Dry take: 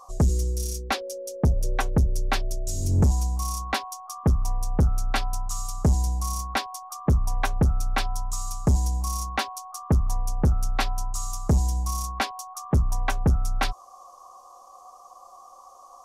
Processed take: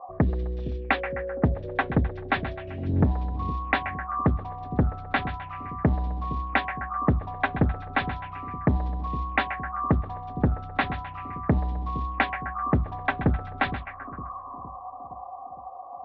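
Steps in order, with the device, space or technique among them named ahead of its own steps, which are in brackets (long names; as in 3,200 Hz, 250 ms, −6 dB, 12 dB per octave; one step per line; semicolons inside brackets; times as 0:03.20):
echo with a time of its own for lows and highs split 470 Hz, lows 462 ms, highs 129 ms, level −12 dB
envelope filter bass rig (envelope-controlled low-pass 670–3,800 Hz up, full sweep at −22.5 dBFS; loudspeaker in its box 63–2,300 Hz, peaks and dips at 80 Hz −7 dB, 280 Hz +6 dB, 660 Hz +3 dB, 1,800 Hz +5 dB)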